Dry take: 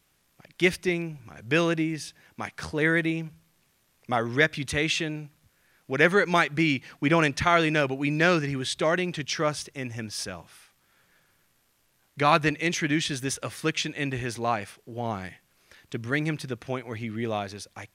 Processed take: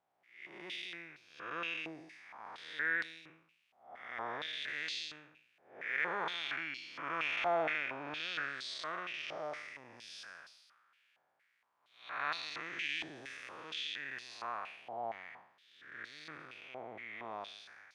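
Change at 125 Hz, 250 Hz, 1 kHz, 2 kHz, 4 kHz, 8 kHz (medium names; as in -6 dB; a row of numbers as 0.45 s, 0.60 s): -30.5 dB, -25.5 dB, -12.0 dB, -11.0 dB, -9.5 dB, -21.0 dB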